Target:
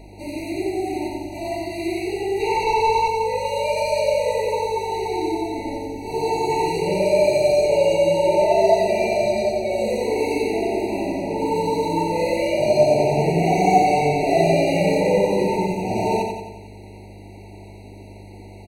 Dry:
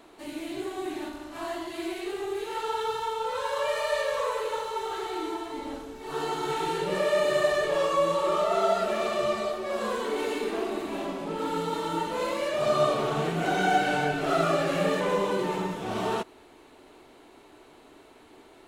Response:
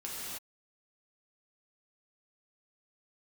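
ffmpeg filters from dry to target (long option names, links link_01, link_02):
-filter_complex "[0:a]asettb=1/sr,asplit=3[link_01][link_02][link_03];[link_01]atrim=end=2.404[link_04];[link_02]atrim=start=2.4:end=3.08,asetpts=PTS-STARTPTS,afade=type=in:duration=0.004:curve=qsin,afade=type=out:start_time=0.676:duration=0.004:curve=qsin,asplit=2[link_05][link_06];[link_06]highpass=frequency=720:poles=1,volume=19dB,asoftclip=type=tanh:threshold=-18.5dB[link_07];[link_05][link_07]amix=inputs=2:normalize=0,lowpass=frequency=2800:poles=1,volume=-6dB[link_08];[link_03]atrim=start=3.076[link_09];[link_04][link_08]acrossfade=duration=0.004:curve1=hsin:curve2=qsin[link_10];[link_10][link_09]acrossfade=duration=0.004:curve1=qsin:curve2=hsin,aeval=exprs='val(0)+0.00355*(sin(2*PI*50*n/s)+sin(2*PI*2*50*n/s)/2+sin(2*PI*3*50*n/s)/3+sin(2*PI*4*50*n/s)/4+sin(2*PI*5*50*n/s)/5)':channel_layout=same,asplit=2[link_11][link_12];[link_12]aecho=0:1:90|180|270|360|450|540|630:0.596|0.322|0.174|0.0938|0.0506|0.0274|0.0148[link_13];[link_11][link_13]amix=inputs=2:normalize=0,afftfilt=real='re*eq(mod(floor(b*sr/1024/960),2),0)':imag='im*eq(mod(floor(b*sr/1024/960),2),0)':win_size=1024:overlap=0.75,volume=7dB"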